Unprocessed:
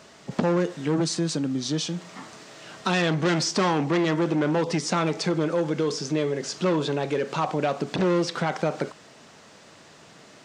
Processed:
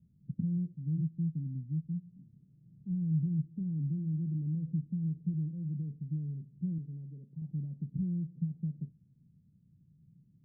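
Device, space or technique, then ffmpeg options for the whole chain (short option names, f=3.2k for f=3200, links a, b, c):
the neighbour's flat through the wall: -filter_complex "[0:a]lowpass=f=150:w=0.5412,lowpass=f=150:w=1.3066,equalizer=f=170:t=o:w=0.72:g=5,asettb=1/sr,asplit=3[a][b][c];[a]atrim=end=6.784[d];[b]atrim=start=6.78:end=7.42,asetpts=PTS-STARTPTS,afade=t=in:d=0.004:c=qsin,afade=t=out:st=0.636:d=0.004:c=qsin,lowshelf=f=240:g=-9[e];[c]atrim=start=7.416[f];[d][e]acrossfade=d=0.004:c1=hsin:c2=qsin[g];[g][f]acrossfade=d=0.004:c1=qsin:c2=hsin,volume=-2.5dB"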